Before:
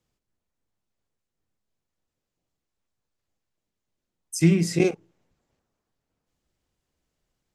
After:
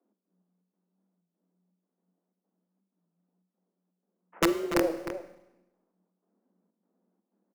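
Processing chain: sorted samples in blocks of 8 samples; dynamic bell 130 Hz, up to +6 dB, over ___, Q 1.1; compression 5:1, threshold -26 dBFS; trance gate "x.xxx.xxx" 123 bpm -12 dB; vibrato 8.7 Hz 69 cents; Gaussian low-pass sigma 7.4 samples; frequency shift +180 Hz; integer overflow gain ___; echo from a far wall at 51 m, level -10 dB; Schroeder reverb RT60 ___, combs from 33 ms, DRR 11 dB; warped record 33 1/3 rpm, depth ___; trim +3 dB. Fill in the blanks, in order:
-32 dBFS, 18.5 dB, 0.93 s, 100 cents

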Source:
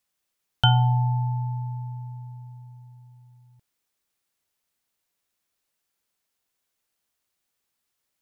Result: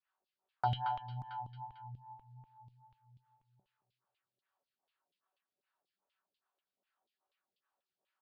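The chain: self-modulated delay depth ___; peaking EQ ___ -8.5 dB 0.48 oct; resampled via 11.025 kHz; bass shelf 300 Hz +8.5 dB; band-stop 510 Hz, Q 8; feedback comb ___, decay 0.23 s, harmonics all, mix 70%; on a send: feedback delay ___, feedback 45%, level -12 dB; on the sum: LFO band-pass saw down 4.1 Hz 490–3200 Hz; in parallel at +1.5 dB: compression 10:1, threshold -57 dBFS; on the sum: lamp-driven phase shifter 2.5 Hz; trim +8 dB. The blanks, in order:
0.18 ms, 2.1 kHz, 190 Hz, 224 ms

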